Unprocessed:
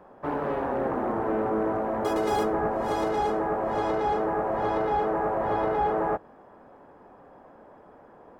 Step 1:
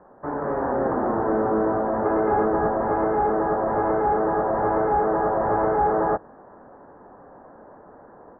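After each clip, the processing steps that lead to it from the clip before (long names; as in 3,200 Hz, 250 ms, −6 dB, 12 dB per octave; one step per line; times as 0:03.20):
Butterworth low-pass 1,800 Hz 48 dB per octave
automatic gain control gain up to 4.5 dB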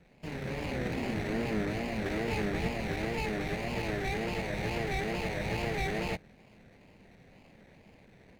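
running median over 41 samples
flat-topped bell 600 Hz −11.5 dB 2.7 octaves
tape wow and flutter 130 cents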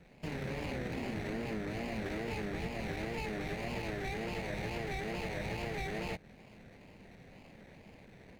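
downward compressor, threshold −37 dBFS, peak gain reduction 10.5 dB
level +2 dB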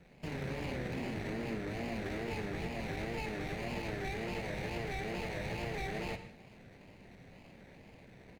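repeating echo 105 ms, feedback 51%, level −19 dB
on a send at −9.5 dB: convolution reverb, pre-delay 3 ms
on the sum: level −1 dB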